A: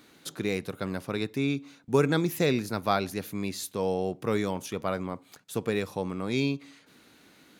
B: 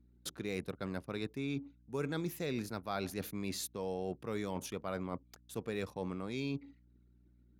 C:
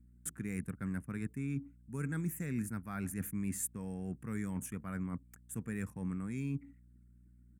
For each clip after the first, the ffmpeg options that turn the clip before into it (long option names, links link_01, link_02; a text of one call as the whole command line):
ffmpeg -i in.wav -af "anlmdn=0.0398,areverse,acompressor=threshold=-36dB:ratio=4,areverse,aeval=exprs='val(0)+0.000631*(sin(2*PI*60*n/s)+sin(2*PI*2*60*n/s)/2+sin(2*PI*3*60*n/s)/3+sin(2*PI*4*60*n/s)/4+sin(2*PI*5*60*n/s)/5)':channel_layout=same" out.wav
ffmpeg -i in.wav -af "firequalizer=gain_entry='entry(220,0);entry(350,-12);entry(570,-19);entry(1700,-2);entry(4000,-29);entry(8000,5);entry(12000,-2)':delay=0.05:min_phase=1,volume=4.5dB" out.wav